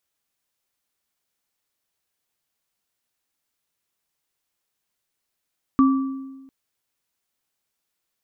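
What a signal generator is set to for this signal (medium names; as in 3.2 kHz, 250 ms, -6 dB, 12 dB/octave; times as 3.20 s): sine partials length 0.70 s, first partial 268 Hz, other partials 1.16 kHz, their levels -8 dB, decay 1.24 s, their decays 0.79 s, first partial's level -11 dB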